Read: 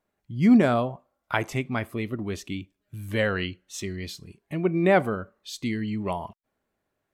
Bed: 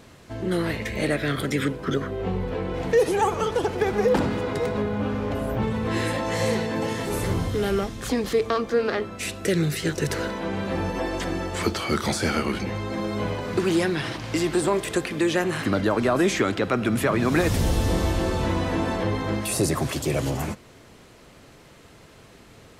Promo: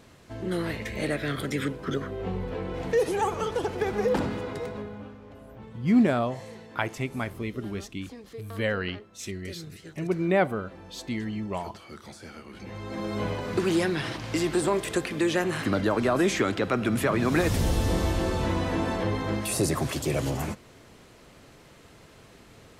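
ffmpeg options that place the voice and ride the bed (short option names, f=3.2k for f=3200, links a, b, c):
-filter_complex "[0:a]adelay=5450,volume=-3dB[a];[1:a]volume=13dB,afade=t=out:st=4.21:d=0.96:silence=0.16788,afade=t=in:st=12.5:d=0.68:silence=0.133352[b];[a][b]amix=inputs=2:normalize=0"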